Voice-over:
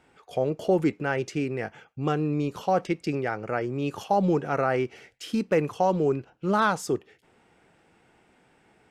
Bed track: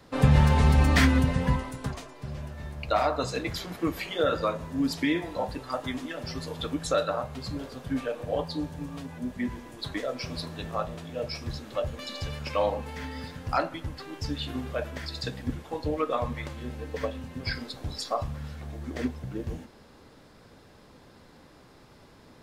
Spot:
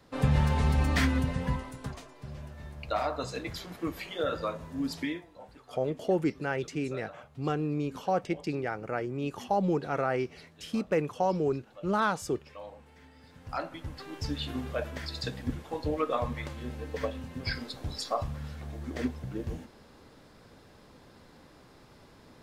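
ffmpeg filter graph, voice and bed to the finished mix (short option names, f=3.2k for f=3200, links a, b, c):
-filter_complex "[0:a]adelay=5400,volume=-4.5dB[a];[1:a]volume=12dB,afade=t=out:st=5.02:d=0.23:silence=0.211349,afade=t=in:st=13.21:d=0.96:silence=0.133352[b];[a][b]amix=inputs=2:normalize=0"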